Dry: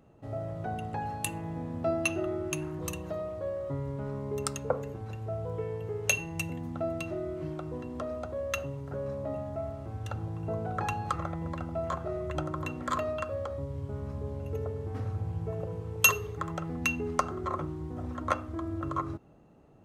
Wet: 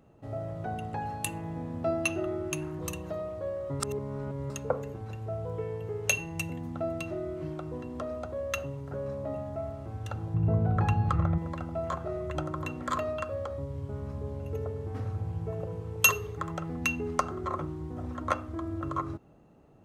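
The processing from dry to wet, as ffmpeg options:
-filter_complex "[0:a]asettb=1/sr,asplit=3[s0][s1][s2];[s0]atrim=end=10.344[s3];[s1]atrim=start=10.34:end=11.38,asetpts=PTS-STARTPTS,afade=t=in:d=0.004:c=qsin,afade=t=out:st=1.036:d=0.004:c=qsin,bass=f=250:g=12,treble=f=4000:g=-8[s4];[s2]atrim=start=11.376[s5];[s3][s4]acrossfade=d=0.004:c1=hsin:c2=qsin[s6];[s6][s5]acrossfade=d=0.004:c1=qsin:c2=hsin,asplit=3[s7][s8][s9];[s7]atrim=end=3.802[s10];[s8]atrim=start=3.798:end=4.502,asetpts=PTS-STARTPTS,areverse[s11];[s9]atrim=start=4.498[s12];[s10][s11]acrossfade=d=0.004:c1=hsin:c2=hsin[s13];[s13][s12]acrossfade=d=0.004:c1=hsin:c2=hsin"

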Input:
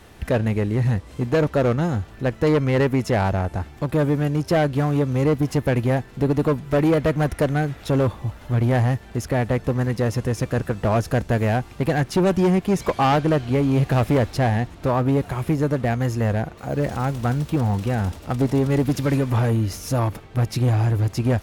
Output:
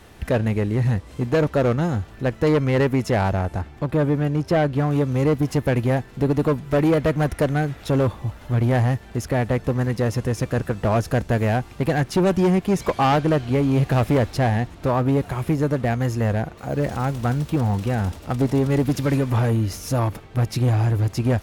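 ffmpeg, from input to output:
-filter_complex "[0:a]asettb=1/sr,asplit=3[s0][s1][s2];[s0]atrim=end=3.614[s3];[s1]atrim=start=3.61:end=4.91,asetpts=PTS-STARTPTS,afade=t=in:d=0.004:c=qsin,afade=t=out:st=1.296:d=0.004:c=qsin,highshelf=f=4900:g=-8.5[s4];[s2]atrim=start=4.906[s5];[s3][s4]acrossfade=d=0.004:c1=hsin:c2=qsin[s6];[s6][s5]acrossfade=d=0.004:c1=qsin:c2=hsin"

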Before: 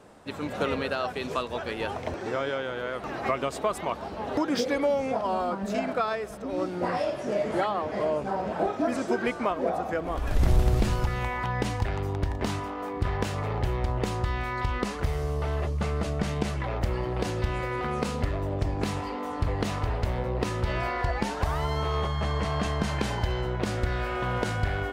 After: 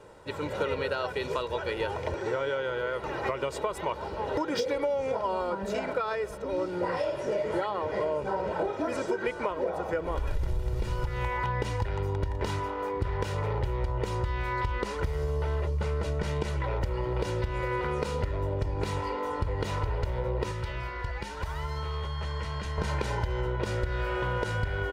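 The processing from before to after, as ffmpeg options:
-filter_complex "[0:a]asettb=1/sr,asplit=3[s0][s1][s2];[s0]atrim=end=20.514[s3];[s1]atrim=start=20.51:end=22.78,asetpts=PTS-STARTPTS,afade=t=in:d=0.004:c=qsin,afade=t=out:st=2.266:d=0.004:c=qsin,acrossover=split=230|1200[s4][s5][s6];[s4]acompressor=threshold=0.0178:ratio=4[s7];[s5]acompressor=threshold=0.00501:ratio=4[s8];[s6]acompressor=threshold=0.00891:ratio=4[s9];[s7][s8][s9]amix=inputs=3:normalize=0[s10];[s2]atrim=start=22.776[s11];[s3][s10]acrossfade=d=0.004:c1=hsin:c2=qsin[s12];[s12][s11]acrossfade=d=0.004:c1=qsin:c2=hsin,highshelf=f=5100:g=-4.5,aecho=1:1:2.1:0.64,acompressor=threshold=0.0562:ratio=10"

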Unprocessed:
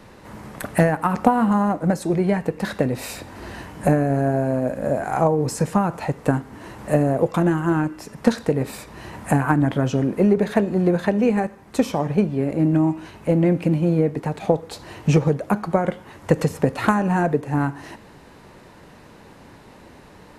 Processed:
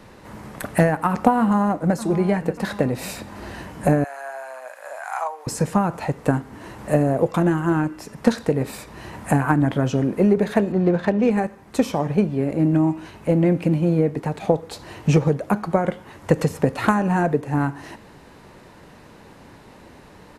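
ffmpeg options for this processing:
-filter_complex "[0:a]asplit=2[s0][s1];[s1]afade=t=in:st=1.39:d=0.01,afade=t=out:st=1.98:d=0.01,aecho=0:1:590|1180|1770|2360|2950|3540:0.199526|0.109739|0.0603567|0.0331962|0.0182579|0.0100418[s2];[s0][s2]amix=inputs=2:normalize=0,asettb=1/sr,asplit=3[s3][s4][s5];[s3]atrim=end=4.044[s6];[s4]atrim=start=4.04:end=5.47,asetpts=PTS-STARTPTS,afade=t=in:d=0.004:c=qsin,afade=t=out:st=1.426:d=0.004:c=qsin,highpass=f=870:w=0.5412,highpass=f=870:w=1.3066[s7];[s5]atrim=start=5.466[s8];[s6][s7]acrossfade=d=0.004:c1=hsin:c2=qsin[s9];[s9][s8]acrossfade=d=0.004:c1=qsin:c2=hsin,asettb=1/sr,asplit=3[s10][s11][s12];[s10]atrim=end=10.724[s13];[s11]atrim=start=10.72:end=11.31,asetpts=PTS-STARTPTS,afade=t=in:d=0.004:c=qsin,afade=t=out:st=0.586:d=0.004:c=qsin,adynamicsmooth=sensitivity=4.5:basefreq=2800[s14];[s12]atrim=start=11.306[s15];[s13][s14]acrossfade=d=0.004:c1=hsin:c2=qsin[s16];[s16][s15]acrossfade=d=0.004:c1=qsin:c2=hsin"

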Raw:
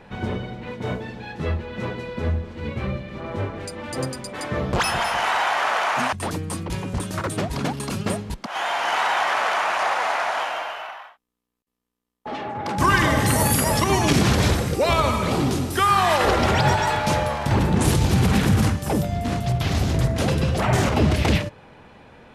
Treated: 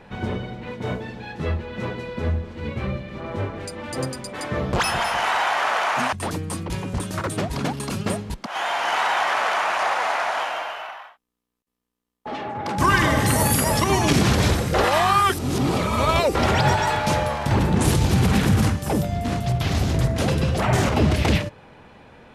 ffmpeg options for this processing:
-filter_complex "[0:a]asplit=3[s0][s1][s2];[s0]atrim=end=14.742[s3];[s1]atrim=start=14.738:end=16.352,asetpts=PTS-STARTPTS,areverse[s4];[s2]atrim=start=16.348[s5];[s3][s4]acrossfade=d=0.004:c1=hsin:c2=hsin[s6];[s6][s5]acrossfade=d=0.004:c1=hsin:c2=hsin"

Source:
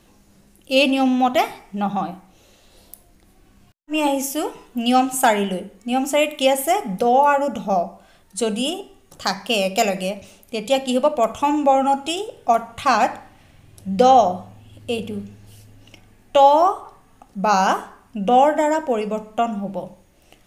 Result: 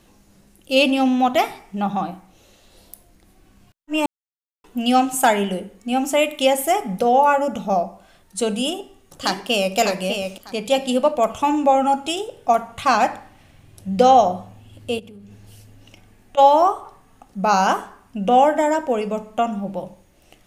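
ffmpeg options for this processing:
-filter_complex "[0:a]asplit=2[s0][s1];[s1]afade=t=in:st=8.63:d=0.01,afade=t=out:st=9.77:d=0.01,aecho=0:1:600|1200|1800:0.501187|0.100237|0.0200475[s2];[s0][s2]amix=inputs=2:normalize=0,asplit=3[s3][s4][s5];[s3]afade=t=out:st=14.98:d=0.02[s6];[s4]acompressor=threshold=0.0126:ratio=12:attack=3.2:release=140:knee=1:detection=peak,afade=t=in:st=14.98:d=0.02,afade=t=out:st=16.37:d=0.02[s7];[s5]afade=t=in:st=16.37:d=0.02[s8];[s6][s7][s8]amix=inputs=3:normalize=0,asplit=3[s9][s10][s11];[s9]atrim=end=4.06,asetpts=PTS-STARTPTS,afade=t=out:st=4.056:d=0.004:c=hsin[s12];[s10]atrim=start=4.06:end=4.64,asetpts=PTS-STARTPTS,volume=0[s13];[s11]atrim=start=4.64,asetpts=PTS-STARTPTS,afade=t=in:d=0.004:c=hsin[s14];[s12][s13][s14]concat=n=3:v=0:a=1"

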